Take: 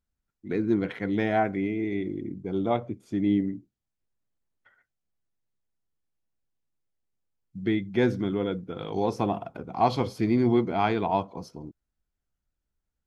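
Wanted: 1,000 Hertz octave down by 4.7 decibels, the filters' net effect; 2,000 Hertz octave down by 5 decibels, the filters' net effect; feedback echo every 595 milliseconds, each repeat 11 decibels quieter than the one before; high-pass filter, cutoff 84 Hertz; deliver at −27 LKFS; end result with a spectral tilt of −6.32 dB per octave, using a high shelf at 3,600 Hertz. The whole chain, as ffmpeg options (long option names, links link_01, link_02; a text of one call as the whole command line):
ffmpeg -i in.wav -af "highpass=84,equalizer=frequency=1000:width_type=o:gain=-6.5,equalizer=frequency=2000:width_type=o:gain=-6,highshelf=frequency=3600:gain=7,aecho=1:1:595|1190|1785:0.282|0.0789|0.0221,volume=2dB" out.wav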